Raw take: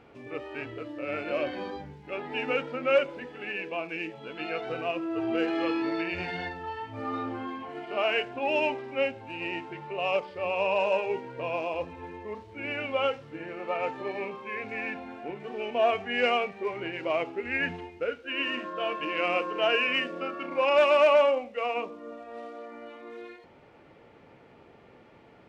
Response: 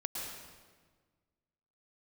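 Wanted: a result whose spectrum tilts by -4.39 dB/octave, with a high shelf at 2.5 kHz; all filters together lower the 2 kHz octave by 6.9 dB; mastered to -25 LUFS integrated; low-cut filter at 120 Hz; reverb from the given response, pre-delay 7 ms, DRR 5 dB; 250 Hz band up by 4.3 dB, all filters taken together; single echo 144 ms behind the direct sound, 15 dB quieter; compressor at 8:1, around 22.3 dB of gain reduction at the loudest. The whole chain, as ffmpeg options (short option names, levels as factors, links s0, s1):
-filter_complex "[0:a]highpass=120,equalizer=f=250:t=o:g=6.5,equalizer=f=2000:t=o:g=-7,highshelf=f=2500:g=-4,acompressor=threshold=0.00891:ratio=8,aecho=1:1:144:0.178,asplit=2[s0][s1];[1:a]atrim=start_sample=2205,adelay=7[s2];[s1][s2]afir=irnorm=-1:irlink=0,volume=0.447[s3];[s0][s3]amix=inputs=2:normalize=0,volume=7.94"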